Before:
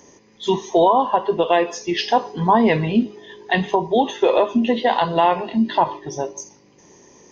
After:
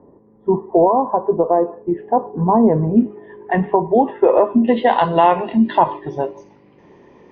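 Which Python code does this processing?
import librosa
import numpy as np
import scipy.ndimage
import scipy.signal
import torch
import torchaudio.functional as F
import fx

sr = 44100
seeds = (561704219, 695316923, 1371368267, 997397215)

y = fx.bessel_lowpass(x, sr, hz=fx.steps((0.0, 710.0), (2.96, 1200.0), (4.67, 2200.0)), order=6)
y = y * librosa.db_to_amplitude(4.0)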